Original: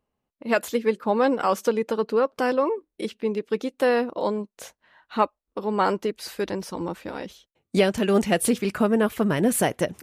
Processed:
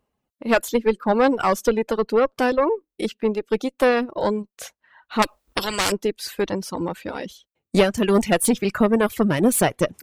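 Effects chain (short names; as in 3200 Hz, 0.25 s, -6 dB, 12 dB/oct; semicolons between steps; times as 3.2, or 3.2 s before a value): one diode to ground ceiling -19 dBFS; reverb removal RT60 0.92 s; 5.22–5.92 spectral compressor 4:1; gain +5.5 dB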